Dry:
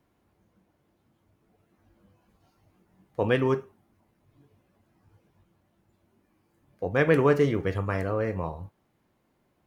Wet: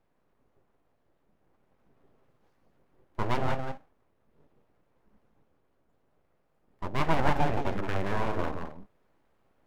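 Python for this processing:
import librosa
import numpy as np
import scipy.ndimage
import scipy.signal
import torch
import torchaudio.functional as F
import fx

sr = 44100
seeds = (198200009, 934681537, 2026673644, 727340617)

p1 = fx.rider(x, sr, range_db=10, speed_s=2.0)
p2 = fx.high_shelf(p1, sr, hz=2200.0, db=-11.0)
p3 = p2 + fx.echo_single(p2, sr, ms=172, db=-6.5, dry=0)
y = np.abs(p3)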